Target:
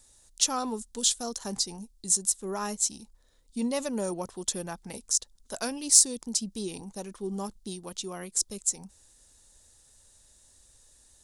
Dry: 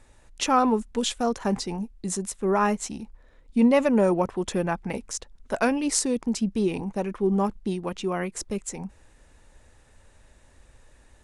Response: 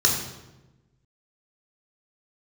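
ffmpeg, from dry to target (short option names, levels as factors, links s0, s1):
-af "aexciter=amount=7:drive=5.7:freq=3500,volume=0.282"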